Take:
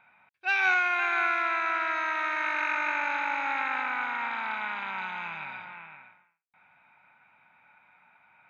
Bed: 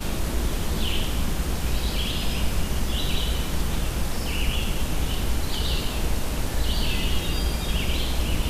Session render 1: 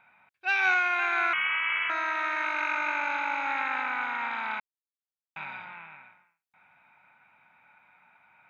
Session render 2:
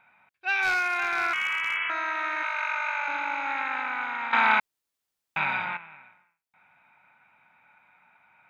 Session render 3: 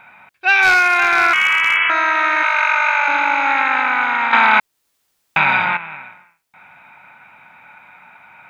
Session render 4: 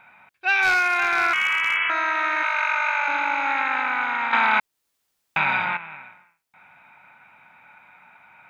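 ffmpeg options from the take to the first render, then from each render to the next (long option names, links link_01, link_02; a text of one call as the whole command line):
ffmpeg -i in.wav -filter_complex "[0:a]asettb=1/sr,asplit=3[link_01][link_02][link_03];[link_01]atrim=end=1.334[link_04];[link_02]atrim=start=1.33:end=1.9,asetpts=PTS-STARTPTS,afade=type=in:duration=0.004:curve=qsin,afade=type=out:start_time=0.566:duration=0.004:curve=qsin,lowpass=frequency=3100:width_type=q:width=0.5098,lowpass=frequency=3100:width_type=q:width=0.6013,lowpass=frequency=3100:width_type=q:width=0.9,lowpass=frequency=3100:width_type=q:width=2.563,afreqshift=-3600[link_05];[link_03]atrim=start=1.896[link_06];[link_04][link_05]acrossfade=duration=0.004:curve1=hsin:curve2=qsin[link_07];[link_07][link_06]acrossfade=duration=0.004:curve1=qsin:curve2=hsin,asettb=1/sr,asplit=3[link_08][link_09][link_10];[link_08]atrim=end=2.444[link_11];[link_09]atrim=start=2.44:end=3.48,asetpts=PTS-STARTPTS,afade=type=in:duration=0.004:curve=qsin,afade=type=out:start_time=1.036:duration=0.004:curve=qsin,bandreject=frequency=1800:width=11[link_12];[link_10]atrim=start=3.476[link_13];[link_11][link_12]acrossfade=duration=0.004:curve1=hsin:curve2=qsin[link_14];[link_14][link_13]acrossfade=duration=0.004:curve1=qsin:curve2=hsin,asplit=3[link_15][link_16][link_17];[link_15]atrim=end=4.6,asetpts=PTS-STARTPTS,afade=type=out:start_time=4.596:duration=0.004:curve=hsin[link_18];[link_16]atrim=start=4.6:end=5.36,asetpts=PTS-STARTPTS,volume=0[link_19];[link_17]atrim=start=5.36,asetpts=PTS-STARTPTS,afade=type=in:duration=0.004:curve=hsin[link_20];[link_18][link_19][link_20]concat=n=3:v=0:a=1" out.wav
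ffmpeg -i in.wav -filter_complex "[0:a]asplit=3[link_01][link_02][link_03];[link_01]afade=type=out:start_time=0.61:duration=0.02[link_04];[link_02]volume=20dB,asoftclip=hard,volume=-20dB,afade=type=in:start_time=0.61:duration=0.02,afade=type=out:start_time=1.75:duration=0.02[link_05];[link_03]afade=type=in:start_time=1.75:duration=0.02[link_06];[link_04][link_05][link_06]amix=inputs=3:normalize=0,asettb=1/sr,asplit=3[link_07][link_08][link_09];[link_07]atrim=end=2.434[link_10];[link_08]atrim=start=2.43:end=3.08,asetpts=PTS-STARTPTS,afade=type=in:duration=0.004:curve=qsin,afade=type=out:start_time=0.646:duration=0.004:curve=qsin,highpass=frequency=580:width=0.5412,highpass=frequency=580:width=1.3066[link_11];[link_09]atrim=start=3.076[link_12];[link_10][link_11]acrossfade=duration=0.004:curve1=hsin:curve2=qsin[link_13];[link_13][link_12]acrossfade=duration=0.004:curve1=qsin:curve2=hsin,asplit=3[link_14][link_15][link_16];[link_14]atrim=end=4.332[link_17];[link_15]atrim=start=4.328:end=5.772,asetpts=PTS-STARTPTS,volume=12dB[link_18];[link_16]atrim=start=5.768[link_19];[link_17][link_18]acrossfade=duration=0.004:curve1=hsin:curve2=hsin[link_20];[link_20][link_19]acrossfade=duration=0.004:curve1=hsin:curve2=hsin" out.wav
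ffmpeg -i in.wav -filter_complex "[0:a]asplit=2[link_01][link_02];[link_02]acompressor=threshold=-34dB:ratio=6,volume=0dB[link_03];[link_01][link_03]amix=inputs=2:normalize=0,alimiter=level_in=10.5dB:limit=-1dB:release=50:level=0:latency=1" out.wav
ffmpeg -i in.wav -af "volume=-7dB" out.wav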